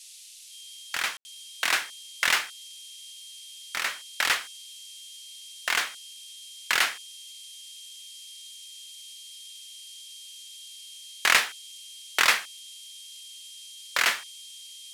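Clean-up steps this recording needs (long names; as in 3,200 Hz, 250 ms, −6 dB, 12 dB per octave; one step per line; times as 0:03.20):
notch filter 3,200 Hz, Q 30
ambience match 0:01.17–0:01.25
noise reduction from a noise print 29 dB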